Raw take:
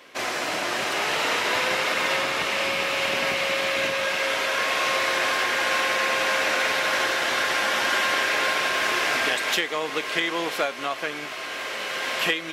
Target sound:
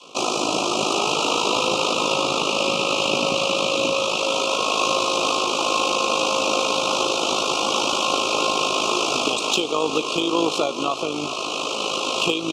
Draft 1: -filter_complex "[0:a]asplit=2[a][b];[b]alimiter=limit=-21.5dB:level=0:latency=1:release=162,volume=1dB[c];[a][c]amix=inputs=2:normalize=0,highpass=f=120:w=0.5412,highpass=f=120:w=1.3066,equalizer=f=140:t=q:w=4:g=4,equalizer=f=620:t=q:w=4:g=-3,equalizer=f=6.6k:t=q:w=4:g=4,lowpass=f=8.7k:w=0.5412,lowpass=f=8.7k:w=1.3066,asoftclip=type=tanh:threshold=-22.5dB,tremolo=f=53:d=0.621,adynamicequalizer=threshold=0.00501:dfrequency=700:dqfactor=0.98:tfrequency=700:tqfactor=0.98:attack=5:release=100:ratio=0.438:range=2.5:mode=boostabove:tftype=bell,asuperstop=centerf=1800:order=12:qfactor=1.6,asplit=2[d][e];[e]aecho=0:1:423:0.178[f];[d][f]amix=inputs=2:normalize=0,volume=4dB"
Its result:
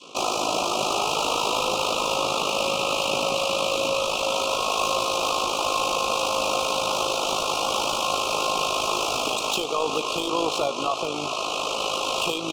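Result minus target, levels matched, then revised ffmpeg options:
soft clip: distortion +14 dB; 250 Hz band -4.0 dB
-filter_complex "[0:a]asplit=2[a][b];[b]alimiter=limit=-21.5dB:level=0:latency=1:release=162,volume=1dB[c];[a][c]amix=inputs=2:normalize=0,highpass=f=120:w=0.5412,highpass=f=120:w=1.3066,equalizer=f=140:t=q:w=4:g=4,equalizer=f=620:t=q:w=4:g=-3,equalizer=f=6.6k:t=q:w=4:g=4,lowpass=f=8.7k:w=0.5412,lowpass=f=8.7k:w=1.3066,asoftclip=type=tanh:threshold=-10.5dB,tremolo=f=53:d=0.621,adynamicequalizer=threshold=0.00501:dfrequency=310:dqfactor=0.98:tfrequency=310:tqfactor=0.98:attack=5:release=100:ratio=0.438:range=2.5:mode=boostabove:tftype=bell,asuperstop=centerf=1800:order=12:qfactor=1.6,asplit=2[d][e];[e]aecho=0:1:423:0.178[f];[d][f]amix=inputs=2:normalize=0,volume=4dB"

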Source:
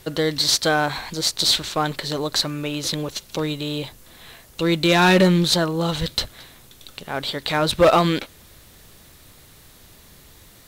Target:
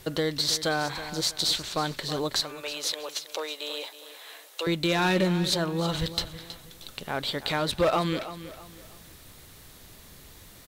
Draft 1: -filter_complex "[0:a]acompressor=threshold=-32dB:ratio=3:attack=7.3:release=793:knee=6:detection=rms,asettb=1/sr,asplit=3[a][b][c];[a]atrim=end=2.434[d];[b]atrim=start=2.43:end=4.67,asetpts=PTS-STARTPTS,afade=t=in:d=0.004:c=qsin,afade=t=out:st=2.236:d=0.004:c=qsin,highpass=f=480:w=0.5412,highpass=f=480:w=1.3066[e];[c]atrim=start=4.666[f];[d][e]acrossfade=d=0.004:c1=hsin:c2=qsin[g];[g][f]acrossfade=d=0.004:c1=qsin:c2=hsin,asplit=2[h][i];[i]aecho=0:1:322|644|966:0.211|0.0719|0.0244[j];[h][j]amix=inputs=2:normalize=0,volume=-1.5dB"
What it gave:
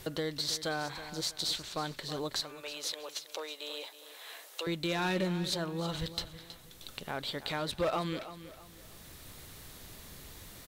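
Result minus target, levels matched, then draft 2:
compressor: peak gain reduction +7.5 dB
-filter_complex "[0:a]acompressor=threshold=-20.5dB:ratio=3:attack=7.3:release=793:knee=6:detection=rms,asettb=1/sr,asplit=3[a][b][c];[a]atrim=end=2.434[d];[b]atrim=start=2.43:end=4.67,asetpts=PTS-STARTPTS,afade=t=in:d=0.004:c=qsin,afade=t=out:st=2.236:d=0.004:c=qsin,highpass=f=480:w=0.5412,highpass=f=480:w=1.3066[e];[c]atrim=start=4.666[f];[d][e]acrossfade=d=0.004:c1=hsin:c2=qsin[g];[g][f]acrossfade=d=0.004:c1=qsin:c2=hsin,asplit=2[h][i];[i]aecho=0:1:322|644|966:0.211|0.0719|0.0244[j];[h][j]amix=inputs=2:normalize=0,volume=-1.5dB"

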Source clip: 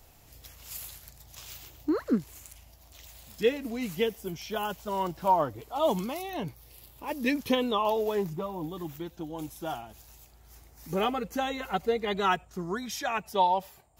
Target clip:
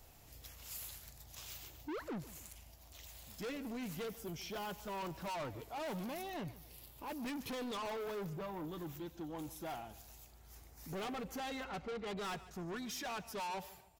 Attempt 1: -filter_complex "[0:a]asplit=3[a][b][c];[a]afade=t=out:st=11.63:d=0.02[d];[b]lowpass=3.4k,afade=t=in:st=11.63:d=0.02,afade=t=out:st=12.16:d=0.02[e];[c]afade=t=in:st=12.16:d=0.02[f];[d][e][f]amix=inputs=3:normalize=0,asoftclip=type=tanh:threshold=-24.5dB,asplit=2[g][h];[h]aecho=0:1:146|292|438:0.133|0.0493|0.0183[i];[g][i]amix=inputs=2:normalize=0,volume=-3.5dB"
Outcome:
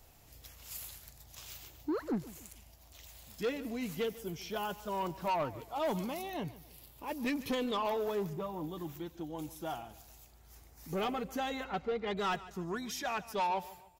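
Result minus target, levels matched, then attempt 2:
soft clip: distortion -7 dB
-filter_complex "[0:a]asplit=3[a][b][c];[a]afade=t=out:st=11.63:d=0.02[d];[b]lowpass=3.4k,afade=t=in:st=11.63:d=0.02,afade=t=out:st=12.16:d=0.02[e];[c]afade=t=in:st=12.16:d=0.02[f];[d][e][f]amix=inputs=3:normalize=0,asoftclip=type=tanh:threshold=-36dB,asplit=2[g][h];[h]aecho=0:1:146|292|438:0.133|0.0493|0.0183[i];[g][i]amix=inputs=2:normalize=0,volume=-3.5dB"

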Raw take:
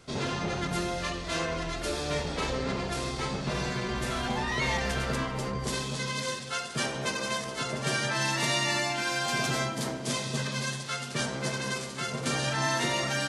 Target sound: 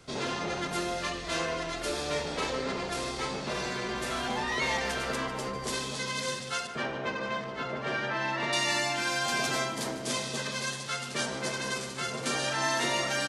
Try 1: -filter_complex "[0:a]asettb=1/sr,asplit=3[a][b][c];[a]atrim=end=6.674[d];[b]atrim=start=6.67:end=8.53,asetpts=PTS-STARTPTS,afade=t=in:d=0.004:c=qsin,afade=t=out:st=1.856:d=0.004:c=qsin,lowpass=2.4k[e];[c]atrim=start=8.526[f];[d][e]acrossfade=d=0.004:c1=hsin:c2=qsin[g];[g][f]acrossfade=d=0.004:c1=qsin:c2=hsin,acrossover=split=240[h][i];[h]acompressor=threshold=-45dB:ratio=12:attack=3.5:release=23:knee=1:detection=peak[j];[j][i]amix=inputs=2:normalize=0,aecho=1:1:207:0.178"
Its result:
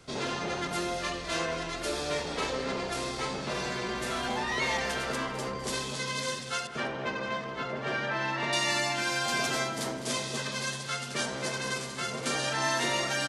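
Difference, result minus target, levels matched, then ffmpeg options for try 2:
echo 57 ms late
-filter_complex "[0:a]asettb=1/sr,asplit=3[a][b][c];[a]atrim=end=6.674[d];[b]atrim=start=6.67:end=8.53,asetpts=PTS-STARTPTS,afade=t=in:d=0.004:c=qsin,afade=t=out:st=1.856:d=0.004:c=qsin,lowpass=2.4k[e];[c]atrim=start=8.526[f];[d][e]acrossfade=d=0.004:c1=hsin:c2=qsin[g];[g][f]acrossfade=d=0.004:c1=qsin:c2=hsin,acrossover=split=240[h][i];[h]acompressor=threshold=-45dB:ratio=12:attack=3.5:release=23:knee=1:detection=peak[j];[j][i]amix=inputs=2:normalize=0,aecho=1:1:150:0.178"

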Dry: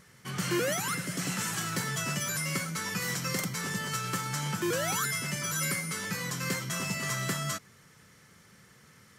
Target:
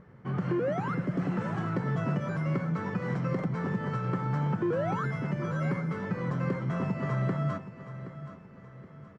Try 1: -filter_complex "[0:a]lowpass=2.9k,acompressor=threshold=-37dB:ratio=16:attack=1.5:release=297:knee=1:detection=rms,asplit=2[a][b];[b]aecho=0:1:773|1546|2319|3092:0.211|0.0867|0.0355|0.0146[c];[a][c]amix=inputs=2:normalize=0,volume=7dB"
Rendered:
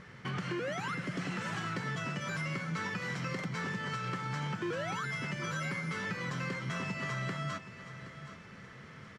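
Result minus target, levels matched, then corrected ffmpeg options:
4000 Hz band +16.0 dB; compressor: peak gain reduction +8 dB
-filter_complex "[0:a]lowpass=870,acompressor=threshold=-29.5dB:ratio=16:attack=1.5:release=297:knee=1:detection=rms,asplit=2[a][b];[b]aecho=0:1:773|1546|2319|3092:0.211|0.0867|0.0355|0.0146[c];[a][c]amix=inputs=2:normalize=0,volume=7dB"

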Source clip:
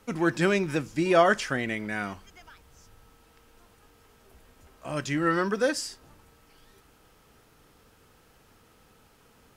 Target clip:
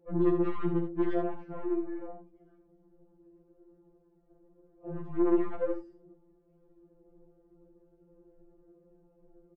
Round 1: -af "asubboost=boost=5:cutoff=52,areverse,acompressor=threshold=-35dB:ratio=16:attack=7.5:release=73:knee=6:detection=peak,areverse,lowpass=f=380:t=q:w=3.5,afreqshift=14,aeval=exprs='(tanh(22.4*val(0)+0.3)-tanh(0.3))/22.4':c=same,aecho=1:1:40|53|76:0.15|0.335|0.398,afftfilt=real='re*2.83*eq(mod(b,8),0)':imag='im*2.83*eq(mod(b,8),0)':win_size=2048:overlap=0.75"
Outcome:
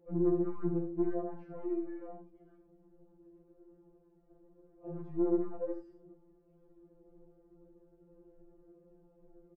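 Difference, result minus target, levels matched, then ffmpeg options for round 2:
compressor: peak gain reduction +8 dB
-af "asubboost=boost=5:cutoff=52,areverse,acompressor=threshold=-26.5dB:ratio=16:attack=7.5:release=73:knee=6:detection=peak,areverse,lowpass=f=380:t=q:w=3.5,afreqshift=14,aeval=exprs='(tanh(22.4*val(0)+0.3)-tanh(0.3))/22.4':c=same,aecho=1:1:40|53|76:0.15|0.335|0.398,afftfilt=real='re*2.83*eq(mod(b,8),0)':imag='im*2.83*eq(mod(b,8),0)':win_size=2048:overlap=0.75"

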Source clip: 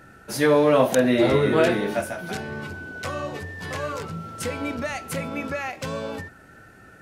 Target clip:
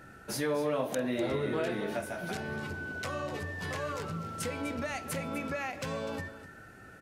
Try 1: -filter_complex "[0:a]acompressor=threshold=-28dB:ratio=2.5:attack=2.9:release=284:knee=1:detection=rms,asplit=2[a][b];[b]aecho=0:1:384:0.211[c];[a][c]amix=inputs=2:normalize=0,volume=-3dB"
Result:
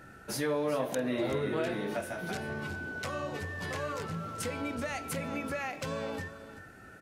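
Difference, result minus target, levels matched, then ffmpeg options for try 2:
echo 0.135 s late
-filter_complex "[0:a]acompressor=threshold=-28dB:ratio=2.5:attack=2.9:release=284:knee=1:detection=rms,asplit=2[a][b];[b]aecho=0:1:249:0.211[c];[a][c]amix=inputs=2:normalize=0,volume=-3dB"

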